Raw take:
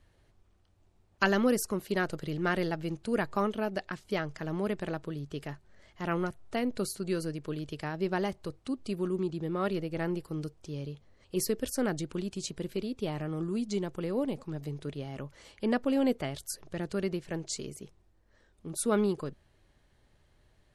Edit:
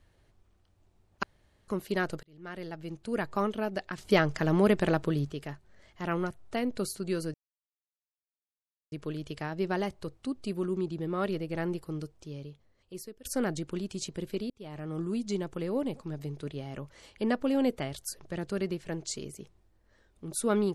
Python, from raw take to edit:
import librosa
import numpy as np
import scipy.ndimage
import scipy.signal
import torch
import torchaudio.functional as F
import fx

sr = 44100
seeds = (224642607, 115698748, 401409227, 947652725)

y = fx.edit(x, sr, fx.room_tone_fill(start_s=1.23, length_s=0.45),
    fx.fade_in_span(start_s=2.23, length_s=1.18),
    fx.clip_gain(start_s=3.98, length_s=1.33, db=8.5),
    fx.insert_silence(at_s=7.34, length_s=1.58),
    fx.fade_out_to(start_s=10.28, length_s=1.39, floor_db=-22.0),
    fx.fade_in_span(start_s=12.92, length_s=0.5), tone=tone)